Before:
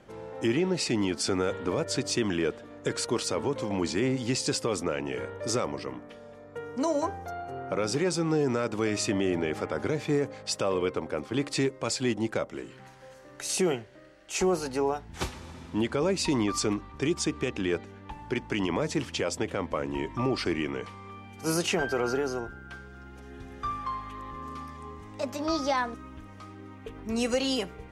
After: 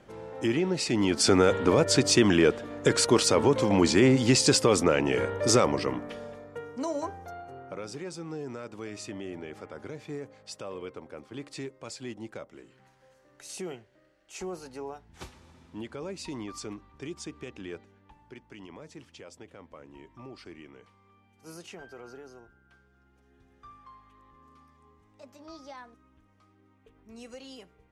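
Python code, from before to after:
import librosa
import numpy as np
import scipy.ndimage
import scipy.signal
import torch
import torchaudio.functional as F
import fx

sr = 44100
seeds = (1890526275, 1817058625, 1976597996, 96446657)

y = fx.gain(x, sr, db=fx.line((0.87, -0.5), (1.29, 7.0), (6.22, 7.0), (6.76, -4.5), (7.35, -4.5), (7.95, -11.5), (17.72, -11.5), (18.43, -18.0)))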